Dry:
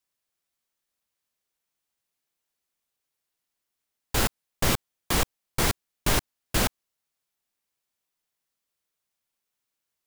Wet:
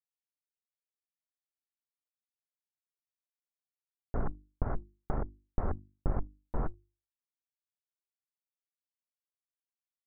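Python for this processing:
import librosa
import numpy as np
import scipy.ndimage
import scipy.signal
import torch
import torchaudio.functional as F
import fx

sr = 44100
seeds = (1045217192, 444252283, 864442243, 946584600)

y = fx.bit_reversed(x, sr, seeds[0], block=256)
y = fx.schmitt(y, sr, flips_db=-35.0)
y = fx.quant_dither(y, sr, seeds[1], bits=12, dither='none')
y = scipy.ndimage.gaussian_filter1d(y, 8.8, mode='constant')
y = fx.hum_notches(y, sr, base_hz=50, count=7)
y = F.gain(torch.from_numpy(y), 10.5).numpy()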